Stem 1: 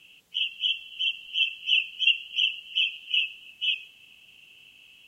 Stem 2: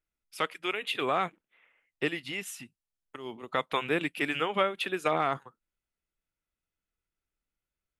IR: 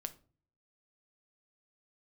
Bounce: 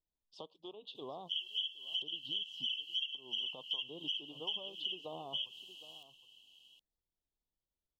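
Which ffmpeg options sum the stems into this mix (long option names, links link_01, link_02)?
-filter_complex "[0:a]highpass=frequency=250:poles=1,equalizer=frequency=3300:width_type=o:width=1.6:gain=10.5,adelay=950,volume=-3dB,asplit=2[link_01][link_02];[link_02]volume=-9dB[link_03];[1:a]lowpass=frequency=4600:width=0.5412,lowpass=frequency=4600:width=1.3066,acompressor=threshold=-46dB:ratio=2,volume=-4dB,asplit=3[link_04][link_05][link_06];[link_05]volume=-17.5dB[link_07];[link_06]apad=whole_len=265826[link_08];[link_01][link_08]sidechaincompress=threshold=-58dB:ratio=8:attack=7.8:release=126[link_09];[link_03][link_07]amix=inputs=2:normalize=0,aecho=0:1:765:1[link_10];[link_09][link_04][link_10]amix=inputs=3:normalize=0,asuperstop=centerf=1800:order=12:qfactor=0.89,acompressor=threshold=-35dB:ratio=12"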